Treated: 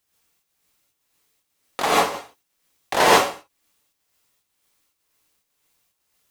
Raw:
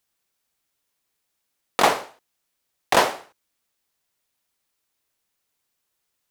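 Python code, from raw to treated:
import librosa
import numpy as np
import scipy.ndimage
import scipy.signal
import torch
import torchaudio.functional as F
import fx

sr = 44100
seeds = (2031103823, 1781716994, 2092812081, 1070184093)

y = fx.peak_eq(x, sr, hz=74.0, db=7.0, octaves=0.23)
y = fx.chopper(y, sr, hz=2.0, depth_pct=60, duty_pct=55)
y = fx.rev_gated(y, sr, seeds[0], gate_ms=170, shape='rising', drr_db=-7.0)
y = y * librosa.db_to_amplitude(1.0)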